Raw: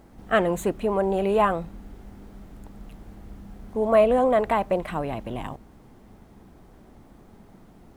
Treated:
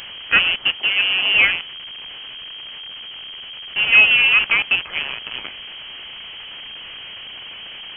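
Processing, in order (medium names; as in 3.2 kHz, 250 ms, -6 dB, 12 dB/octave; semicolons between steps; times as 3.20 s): one-bit delta coder 64 kbps, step -25 dBFS; crossover distortion -34 dBFS; short-mantissa float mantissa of 2-bit; frequency inversion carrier 3.2 kHz; 0.77–1.34 s: high-pass 200 Hz 6 dB/octave; trim +6.5 dB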